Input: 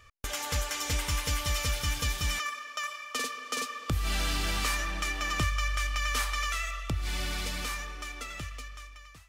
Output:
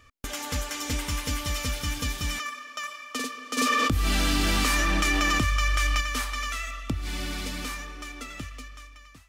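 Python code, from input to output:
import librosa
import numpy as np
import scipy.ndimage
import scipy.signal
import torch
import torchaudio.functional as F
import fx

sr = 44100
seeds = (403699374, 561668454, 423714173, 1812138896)

y = fx.peak_eq(x, sr, hz=260.0, db=11.0, octaves=0.65)
y = fx.env_flatten(y, sr, amount_pct=100, at=(3.57, 6.0), fade=0.02)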